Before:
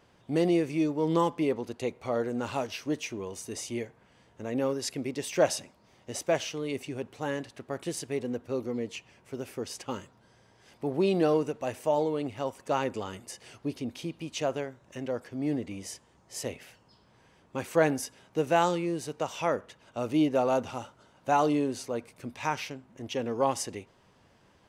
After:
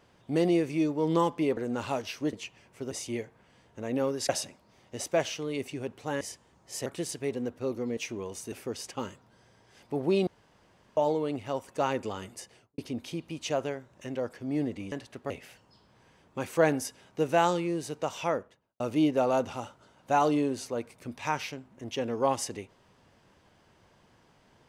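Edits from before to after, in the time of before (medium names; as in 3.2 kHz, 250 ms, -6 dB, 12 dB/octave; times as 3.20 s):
1.57–2.22 s: delete
2.98–3.53 s: swap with 8.85–9.43 s
4.91–5.44 s: delete
7.36–7.74 s: swap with 15.83–16.48 s
11.18–11.88 s: room tone
13.27–13.69 s: studio fade out
19.37–19.98 s: studio fade out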